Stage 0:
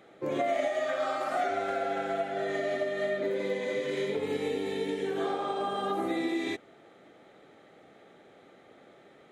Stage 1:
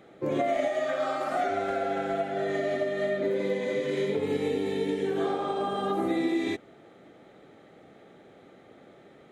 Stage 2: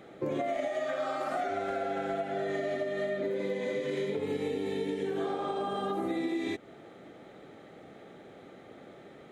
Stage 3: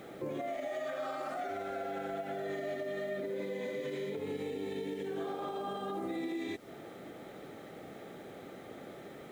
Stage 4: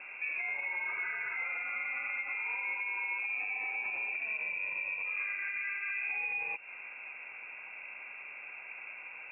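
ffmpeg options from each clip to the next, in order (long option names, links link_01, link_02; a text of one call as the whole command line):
ffmpeg -i in.wav -af "lowshelf=frequency=350:gain=7.5" out.wav
ffmpeg -i in.wav -af "acompressor=threshold=-34dB:ratio=3,volume=2.5dB" out.wav
ffmpeg -i in.wav -af "alimiter=level_in=8.5dB:limit=-24dB:level=0:latency=1:release=182,volume=-8.5dB,acrusher=bits=10:mix=0:aa=0.000001,volume=2.5dB" out.wav
ffmpeg -i in.wav -af "aeval=exprs='val(0)+0.00141*(sin(2*PI*60*n/s)+sin(2*PI*2*60*n/s)/2+sin(2*PI*3*60*n/s)/3+sin(2*PI*4*60*n/s)/4+sin(2*PI*5*60*n/s)/5)':channel_layout=same,lowpass=frequency=2400:width_type=q:width=0.5098,lowpass=frequency=2400:width_type=q:width=0.6013,lowpass=frequency=2400:width_type=q:width=0.9,lowpass=frequency=2400:width_type=q:width=2.563,afreqshift=-2800,volume=1.5dB" out.wav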